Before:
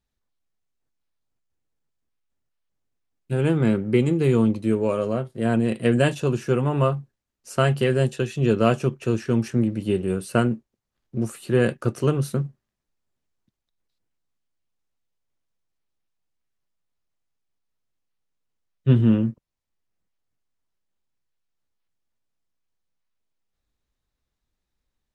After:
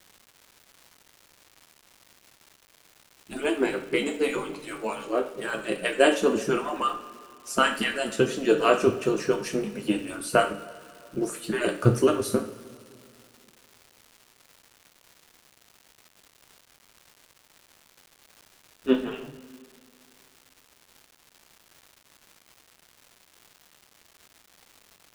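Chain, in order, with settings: harmonic-percussive separation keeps percussive; two-slope reverb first 0.41 s, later 2.7 s, from -19 dB, DRR 3.5 dB; crackle 440 per s -44 dBFS; trim +3 dB

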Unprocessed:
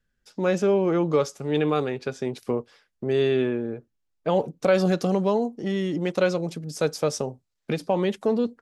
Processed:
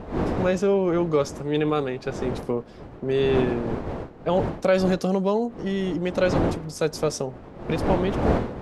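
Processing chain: fade out at the end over 0.71 s; wind noise 470 Hz -30 dBFS

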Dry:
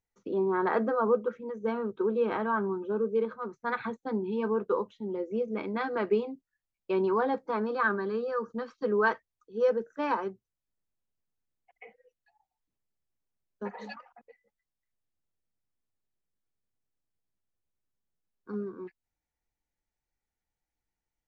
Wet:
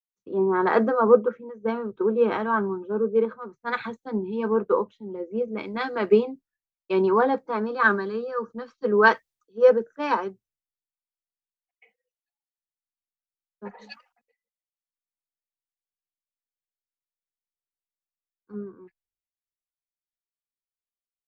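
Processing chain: three bands expanded up and down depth 100%; trim +5 dB

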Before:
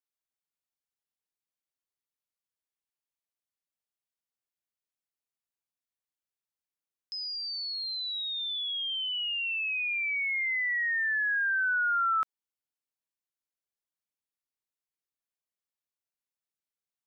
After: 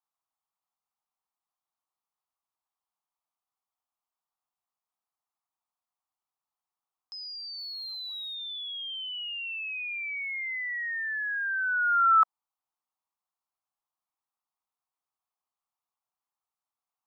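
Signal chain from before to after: 7.58–8.35 s: jump at every zero crossing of -51.5 dBFS; high-order bell 950 Hz +15.5 dB 1.1 oct; trim -4 dB

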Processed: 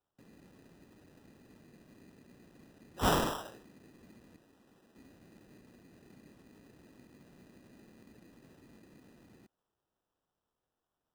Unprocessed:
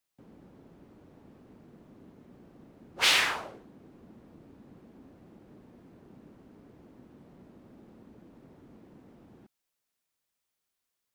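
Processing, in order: 4.36–4.96 s: bass shelf 360 Hz -12 dB; sample-and-hold 20×; trim -4.5 dB

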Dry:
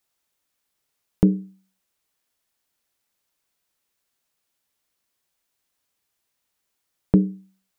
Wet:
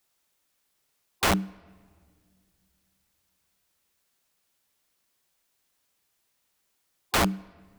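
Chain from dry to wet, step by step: spectral gate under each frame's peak -30 dB strong; integer overflow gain 20 dB; on a send: reverberation RT60 2.0 s, pre-delay 5 ms, DRR 22 dB; on the sum: trim +3 dB

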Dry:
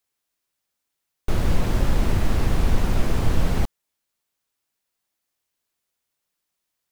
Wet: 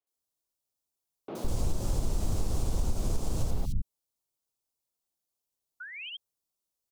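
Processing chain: 5.80–6.10 s: painted sound rise 1.4–3.3 kHz -24 dBFS; peaking EQ 1.8 kHz -13.5 dB 1.1 oct; three bands offset in time mids, highs, lows 70/160 ms, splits 210/2900 Hz; compression, threshold -17 dBFS, peak gain reduction 6.5 dB; 1.48–3.51 s: peaking EQ 7.5 kHz +8.5 dB 1.3 oct; trim -5.5 dB

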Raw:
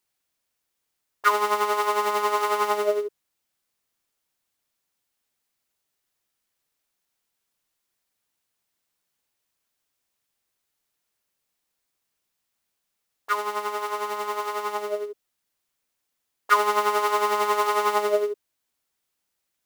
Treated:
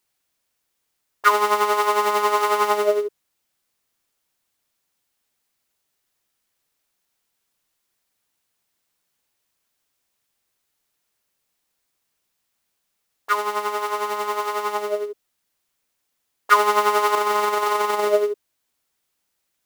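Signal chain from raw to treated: 17.15–18.07 s: compressor with a negative ratio -24 dBFS, ratio -0.5; trim +4 dB

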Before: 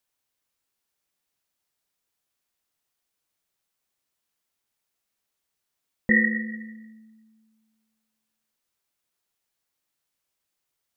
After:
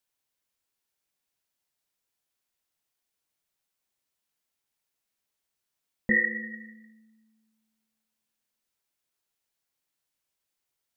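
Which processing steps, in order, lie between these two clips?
band-stop 1.2 kHz, Q 22; de-hum 54.88 Hz, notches 37; trim -2.5 dB

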